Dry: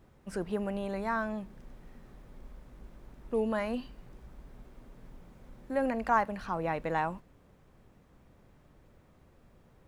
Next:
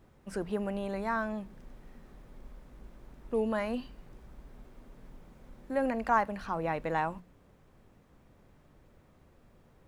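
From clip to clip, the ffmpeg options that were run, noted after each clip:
-af "bandreject=f=60:t=h:w=6,bandreject=f=120:t=h:w=6,bandreject=f=180:t=h:w=6"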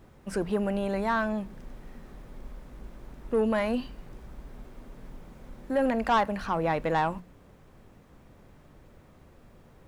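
-af "asoftclip=type=tanh:threshold=-23.5dB,volume=6.5dB"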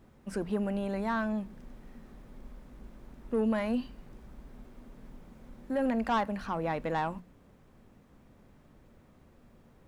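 -af "equalizer=f=230:t=o:w=0.49:g=5.5,volume=-5.5dB"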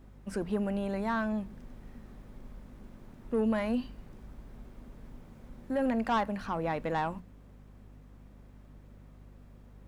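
-af "aeval=exprs='val(0)+0.00251*(sin(2*PI*50*n/s)+sin(2*PI*2*50*n/s)/2+sin(2*PI*3*50*n/s)/3+sin(2*PI*4*50*n/s)/4+sin(2*PI*5*50*n/s)/5)':c=same"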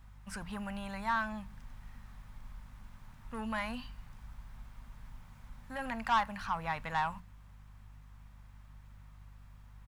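-af "firequalizer=gain_entry='entry(100,0);entry(350,-22);entry(900,2)':delay=0.05:min_phase=1"

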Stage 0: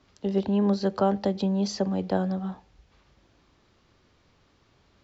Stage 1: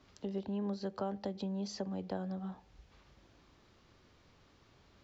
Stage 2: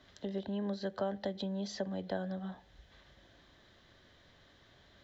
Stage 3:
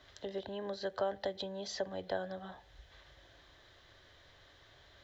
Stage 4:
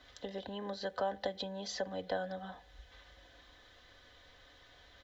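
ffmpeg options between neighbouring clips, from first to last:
-af "acompressor=threshold=-43dB:ratio=2,volume=-1.5dB"
-af "superequalizer=8b=1.78:11b=2.51:13b=2.51"
-af "equalizer=f=210:t=o:w=0.81:g=-14,volume=2.5dB"
-af "aecho=1:1:4:0.54"

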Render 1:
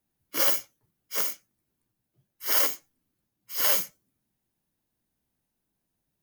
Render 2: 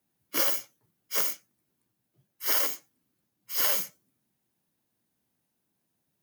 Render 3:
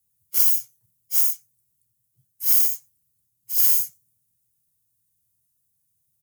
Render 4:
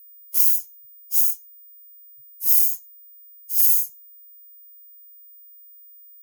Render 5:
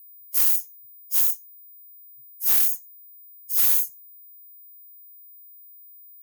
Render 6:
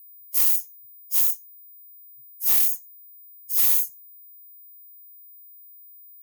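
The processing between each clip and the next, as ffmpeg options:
-af "highpass=110,acompressor=threshold=-24dB:ratio=6,volume=2.5dB"
-af "firequalizer=gain_entry='entry(110,0);entry(230,-22);entry(7900,3)':delay=0.05:min_phase=1,volume=6dB"
-af "aeval=exprs='val(0)+0.00501*sin(2*PI*15000*n/s)':c=same,aemphasis=mode=production:type=cd,volume=-8dB"
-filter_complex "[0:a]acrossover=split=6600[a][b];[a]alimiter=level_in=7dB:limit=-24dB:level=0:latency=1:release=322,volume=-7dB[c];[b]asoftclip=type=hard:threshold=-14.5dB[d];[c][d]amix=inputs=2:normalize=0"
-af "asuperstop=centerf=1500:order=4:qfactor=4.7"

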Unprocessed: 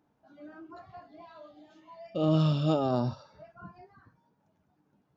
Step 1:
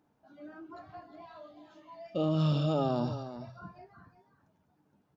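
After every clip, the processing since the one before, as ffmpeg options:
-af "bandreject=f=62.11:t=h:w=4,bandreject=f=124.22:t=h:w=4,alimiter=limit=-20dB:level=0:latency=1:release=37,aecho=1:1:364:0.251"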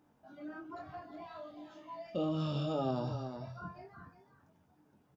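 -filter_complex "[0:a]bandreject=f=4.2k:w=15,acompressor=threshold=-45dB:ratio=1.5,asplit=2[a][b];[b]adelay=23,volume=-6.5dB[c];[a][c]amix=inputs=2:normalize=0,volume=2dB"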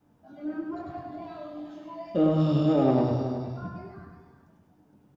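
-filter_complex "[0:a]adynamicequalizer=threshold=0.00355:dfrequency=320:dqfactor=1.7:tfrequency=320:tqfactor=1.7:attack=5:release=100:ratio=0.375:range=3:mode=boostabove:tftype=bell,asplit=2[a][b];[b]adynamicsmooth=sensitivity=2:basefreq=650,volume=1dB[c];[a][c]amix=inputs=2:normalize=0,aecho=1:1:101|202|303|404|505|606:0.631|0.297|0.139|0.0655|0.0308|0.0145,volume=2dB"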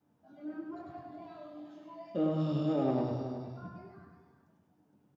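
-af "highpass=96,volume=-8dB"

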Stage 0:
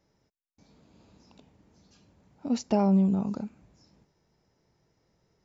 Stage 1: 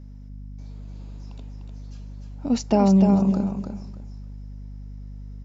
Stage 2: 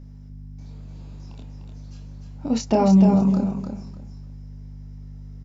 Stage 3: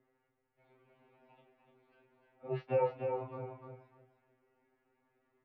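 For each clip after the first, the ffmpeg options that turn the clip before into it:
-filter_complex "[0:a]aeval=exprs='val(0)+0.00562*(sin(2*PI*50*n/s)+sin(2*PI*2*50*n/s)/2+sin(2*PI*3*50*n/s)/3+sin(2*PI*4*50*n/s)/4+sin(2*PI*5*50*n/s)/5)':c=same,asplit=2[a][b];[b]aecho=0:1:299|598|897:0.501|0.105|0.0221[c];[a][c]amix=inputs=2:normalize=0,volume=5.5dB"
-filter_complex "[0:a]asplit=2[a][b];[b]adelay=27,volume=-4.5dB[c];[a][c]amix=inputs=2:normalize=0"
-af "highpass=f=350:t=q:w=0.5412,highpass=f=350:t=q:w=1.307,lowpass=f=2.8k:t=q:w=0.5176,lowpass=f=2.8k:t=q:w=0.7071,lowpass=f=2.8k:t=q:w=1.932,afreqshift=-93,afftfilt=real='re*2.45*eq(mod(b,6),0)':imag='im*2.45*eq(mod(b,6),0)':win_size=2048:overlap=0.75,volume=-6dB"

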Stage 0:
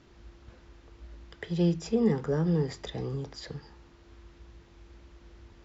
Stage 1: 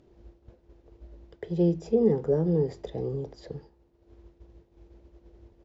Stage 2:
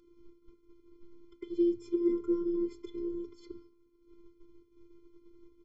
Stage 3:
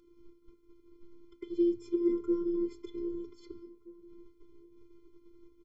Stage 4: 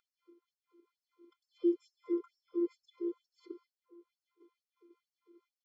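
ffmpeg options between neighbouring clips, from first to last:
-af "agate=range=-33dB:threshold=-42dB:ratio=3:detection=peak,firequalizer=gain_entry='entry(270,0);entry(380,6);entry(560,5);entry(1200,-10)':delay=0.05:min_phase=1,acompressor=mode=upward:threshold=-42dB:ratio=2.5"
-af "afftfilt=real='hypot(re,im)*cos(PI*b)':imag='0':win_size=512:overlap=0.75,afftfilt=real='re*eq(mod(floor(b*sr/1024/510),2),0)':imag='im*eq(mod(floor(b*sr/1024/510),2),0)':win_size=1024:overlap=0.75"
-filter_complex "[0:a]asplit=2[a][b];[b]adelay=1574,volume=-21dB,highshelf=f=4k:g=-35.4[c];[a][c]amix=inputs=2:normalize=0"
-filter_complex "[0:a]aemphasis=mode=reproduction:type=75fm,asplit=2[a][b];[b]adelay=198.3,volume=-20dB,highshelf=f=4k:g=-4.46[c];[a][c]amix=inputs=2:normalize=0,afftfilt=real='re*gte(b*sr/1024,240*pow(4600/240,0.5+0.5*sin(2*PI*2.2*pts/sr)))':imag='im*gte(b*sr/1024,240*pow(4600/240,0.5+0.5*sin(2*PI*2.2*pts/sr)))':win_size=1024:overlap=0.75"

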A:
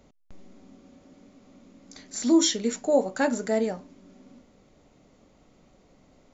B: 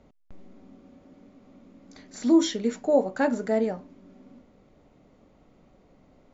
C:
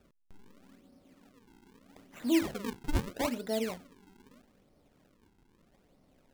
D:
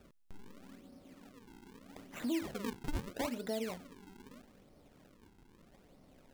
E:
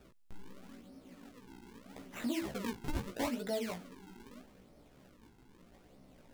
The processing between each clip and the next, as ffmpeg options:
-af "aemphasis=mode=reproduction:type=75fm"
-af "acrusher=samples=42:mix=1:aa=0.000001:lfo=1:lforange=67.2:lforate=0.79,volume=-8dB"
-af "acompressor=threshold=-41dB:ratio=3,volume=4dB"
-af "flanger=delay=15:depth=2.7:speed=2,volume=4.5dB"

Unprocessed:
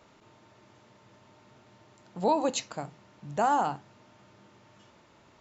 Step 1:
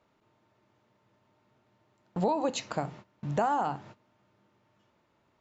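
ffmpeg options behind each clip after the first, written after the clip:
-af "agate=range=-19dB:threshold=-52dB:ratio=16:detection=peak,acompressor=threshold=-34dB:ratio=4,aemphasis=mode=reproduction:type=cd,volume=7.5dB"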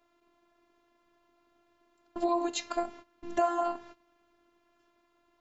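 -af "afftfilt=real='hypot(re,im)*cos(PI*b)':imag='0':win_size=512:overlap=0.75,volume=4dB"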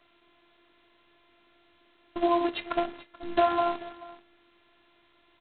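-af "aecho=1:1:433:0.112,volume=4dB" -ar 8000 -c:a adpcm_g726 -b:a 16k

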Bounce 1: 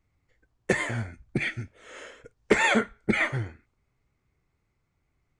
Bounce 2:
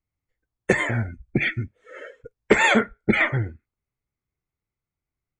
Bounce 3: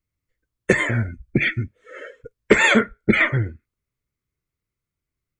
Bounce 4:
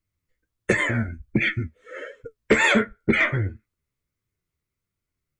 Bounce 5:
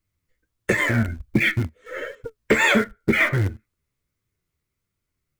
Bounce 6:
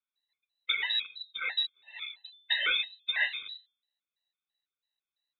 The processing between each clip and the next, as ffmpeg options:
-filter_complex "[0:a]afftdn=nr=22:nf=-40,asplit=2[a][b];[b]acompressor=threshold=-31dB:ratio=6,volume=0dB[c];[a][c]amix=inputs=2:normalize=0,volume=2.5dB"
-af "equalizer=f=790:w=4:g=-11,volume=3dB"
-filter_complex "[0:a]asplit=2[a][b];[b]acompressor=threshold=-23dB:ratio=6,volume=-2.5dB[c];[a][c]amix=inputs=2:normalize=0,flanger=delay=8.7:depth=5.5:regen=47:speed=1.4:shape=triangular,asoftclip=type=tanh:threshold=-6dB"
-filter_complex "[0:a]asplit=2[a][b];[b]acrusher=bits=5:dc=4:mix=0:aa=0.000001,volume=-10dB[c];[a][c]amix=inputs=2:normalize=0,alimiter=limit=-12dB:level=0:latency=1:release=461,volume=3.5dB"
-af "bandreject=f=237:t=h:w=4,bandreject=f=474:t=h:w=4,bandreject=f=711:t=h:w=4,bandreject=f=948:t=h:w=4,lowpass=f=3.4k:t=q:w=0.5098,lowpass=f=3.4k:t=q:w=0.6013,lowpass=f=3.4k:t=q:w=0.9,lowpass=f=3.4k:t=q:w=2.563,afreqshift=-4000,afftfilt=real='re*gt(sin(2*PI*3*pts/sr)*(1-2*mod(floor(b*sr/1024/520),2)),0)':imag='im*gt(sin(2*PI*3*pts/sr)*(1-2*mod(floor(b*sr/1024/520),2)),0)':win_size=1024:overlap=0.75,volume=-7dB"

